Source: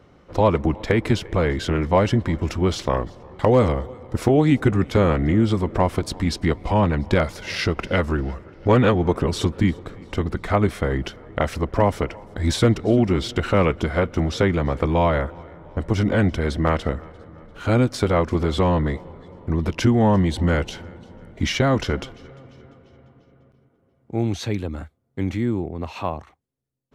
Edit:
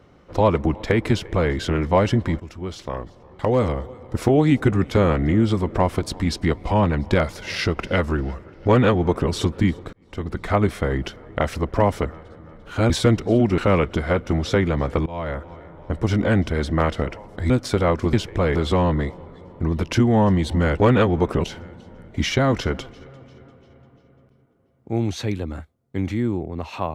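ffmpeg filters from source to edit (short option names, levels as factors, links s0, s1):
-filter_complex "[0:a]asplit=13[s0][s1][s2][s3][s4][s5][s6][s7][s8][s9][s10][s11][s12];[s0]atrim=end=2.4,asetpts=PTS-STARTPTS,afade=t=out:st=2.396:d=0.004:c=hsin:silence=0.199526[s13];[s1]atrim=start=2.4:end=9.93,asetpts=PTS-STARTPTS,afade=t=in:d=1.88:silence=0.199526,afade=t=out:st=7.526:d=0.004:c=hsin[s14];[s2]atrim=start=9.93:end=12.052,asetpts=PTS-STARTPTS,afade=t=in:d=0.51[s15];[s3]atrim=start=16.938:end=17.792[s16];[s4]atrim=start=12.478:end=13.162[s17];[s5]atrim=start=13.448:end=14.93,asetpts=PTS-STARTPTS,afade=t=out:st=1.478:d=0.004:c=hsin:silence=0.0794328[s18];[s6]atrim=start=14.93:end=16.942,asetpts=PTS-STARTPTS,afade=t=in:d=0.52:silence=0.0794328[s19];[s7]atrim=start=12.048:end=12.482[s20];[s8]atrim=start=17.788:end=18.422[s21];[s9]atrim=start=1.098:end=1.522[s22];[s10]atrim=start=18.418:end=20.672[s23];[s11]atrim=start=8.668:end=9.312[s24];[s12]atrim=start=20.668[s25];[s13][s14][s15]concat=n=3:v=0:a=1[s26];[s26][s16]acrossfade=d=0.004:c1=hsin:c2=hsin[s27];[s27][s17]acrossfade=d=0.004:c1=hsin:c2=hsin[s28];[s18][s19]concat=n=2:v=0:a=1[s29];[s28][s29]acrossfade=d=0.004:c1=hsin:c2=hsin[s30];[s30][s20]acrossfade=d=0.004:c1=hsin:c2=hsin[s31];[s31][s21]acrossfade=d=0.004:c1=hsin:c2=hsin[s32];[s32][s22]acrossfade=d=0.004:c1=hsin:c2=hsin[s33];[s33][s23]acrossfade=d=0.004:c1=hsin:c2=hsin[s34];[s34][s24]acrossfade=d=0.004:c1=hsin:c2=hsin[s35];[s35][s25]acrossfade=d=0.004:c1=hsin:c2=hsin"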